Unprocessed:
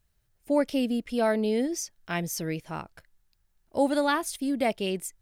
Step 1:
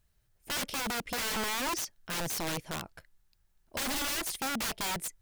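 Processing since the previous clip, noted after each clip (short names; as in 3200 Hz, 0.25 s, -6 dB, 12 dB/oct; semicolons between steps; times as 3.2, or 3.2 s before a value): wrapped overs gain 28 dB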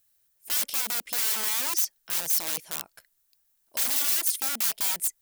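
RIAA curve recording; gain -3.5 dB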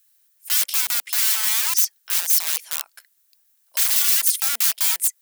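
HPF 1200 Hz 12 dB/oct; gain +7 dB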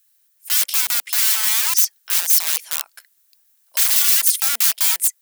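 AGC gain up to 5 dB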